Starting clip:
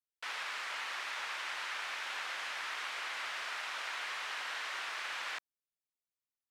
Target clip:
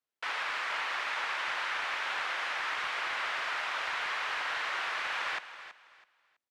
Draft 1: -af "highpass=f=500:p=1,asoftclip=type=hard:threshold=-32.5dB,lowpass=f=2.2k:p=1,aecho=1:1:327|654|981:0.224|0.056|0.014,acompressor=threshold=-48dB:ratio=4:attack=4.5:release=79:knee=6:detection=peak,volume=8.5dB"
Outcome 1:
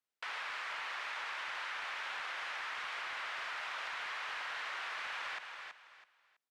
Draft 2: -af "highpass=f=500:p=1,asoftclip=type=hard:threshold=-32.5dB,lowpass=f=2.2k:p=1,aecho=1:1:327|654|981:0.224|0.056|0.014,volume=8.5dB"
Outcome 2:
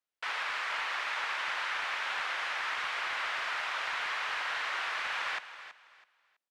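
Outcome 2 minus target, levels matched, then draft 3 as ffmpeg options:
250 Hz band -3.0 dB
-af "highpass=f=200:p=1,asoftclip=type=hard:threshold=-32.5dB,lowpass=f=2.2k:p=1,aecho=1:1:327|654|981:0.224|0.056|0.014,volume=8.5dB"

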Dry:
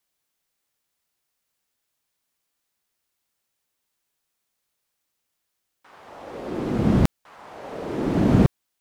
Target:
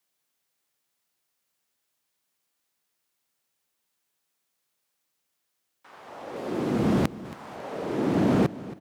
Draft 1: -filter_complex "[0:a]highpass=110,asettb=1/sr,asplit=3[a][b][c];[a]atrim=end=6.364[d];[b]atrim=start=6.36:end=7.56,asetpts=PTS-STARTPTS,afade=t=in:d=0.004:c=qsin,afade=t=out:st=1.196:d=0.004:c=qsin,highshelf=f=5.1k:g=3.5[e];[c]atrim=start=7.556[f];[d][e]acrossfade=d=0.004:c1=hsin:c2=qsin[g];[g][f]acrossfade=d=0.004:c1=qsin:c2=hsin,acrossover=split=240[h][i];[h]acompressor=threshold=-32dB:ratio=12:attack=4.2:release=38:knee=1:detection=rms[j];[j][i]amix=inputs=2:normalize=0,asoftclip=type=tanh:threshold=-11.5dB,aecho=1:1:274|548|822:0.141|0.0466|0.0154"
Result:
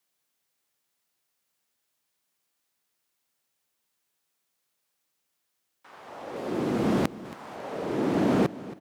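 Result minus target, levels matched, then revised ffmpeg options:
compressor: peak gain reduction +7 dB
-filter_complex "[0:a]highpass=110,asettb=1/sr,asplit=3[a][b][c];[a]atrim=end=6.364[d];[b]atrim=start=6.36:end=7.56,asetpts=PTS-STARTPTS,afade=t=in:d=0.004:c=qsin,afade=t=out:st=1.196:d=0.004:c=qsin,highshelf=f=5.1k:g=3.5[e];[c]atrim=start=7.556[f];[d][e]acrossfade=d=0.004:c1=hsin:c2=qsin[g];[g][f]acrossfade=d=0.004:c1=qsin:c2=hsin,acrossover=split=240[h][i];[h]acompressor=threshold=-24.5dB:ratio=12:attack=4.2:release=38:knee=1:detection=rms[j];[j][i]amix=inputs=2:normalize=0,asoftclip=type=tanh:threshold=-11.5dB,aecho=1:1:274|548|822:0.141|0.0466|0.0154"

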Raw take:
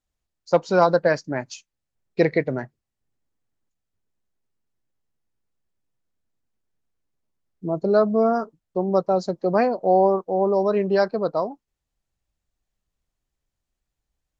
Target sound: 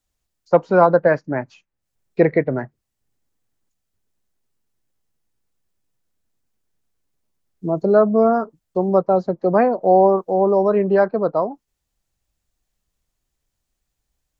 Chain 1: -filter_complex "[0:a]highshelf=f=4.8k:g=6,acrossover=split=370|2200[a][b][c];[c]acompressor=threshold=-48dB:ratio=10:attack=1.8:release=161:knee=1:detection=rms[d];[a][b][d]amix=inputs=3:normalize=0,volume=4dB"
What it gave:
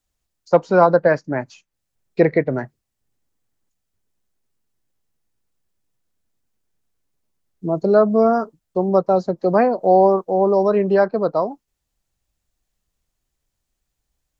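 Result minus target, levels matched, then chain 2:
compressor: peak gain reduction -11 dB
-filter_complex "[0:a]highshelf=f=4.8k:g=6,acrossover=split=370|2200[a][b][c];[c]acompressor=threshold=-60dB:ratio=10:attack=1.8:release=161:knee=1:detection=rms[d];[a][b][d]amix=inputs=3:normalize=0,volume=4dB"

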